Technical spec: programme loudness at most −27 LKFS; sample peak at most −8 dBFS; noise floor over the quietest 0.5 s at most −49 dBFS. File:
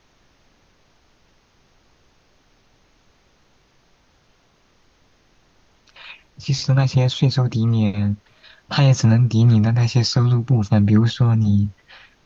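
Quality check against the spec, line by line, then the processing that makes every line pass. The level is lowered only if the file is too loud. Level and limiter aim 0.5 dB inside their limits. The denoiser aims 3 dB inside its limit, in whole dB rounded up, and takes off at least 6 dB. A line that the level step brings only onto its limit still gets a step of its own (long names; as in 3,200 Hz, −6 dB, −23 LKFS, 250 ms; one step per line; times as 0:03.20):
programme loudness −18.0 LKFS: out of spec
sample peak −5.0 dBFS: out of spec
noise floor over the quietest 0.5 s −59 dBFS: in spec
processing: level −9.5 dB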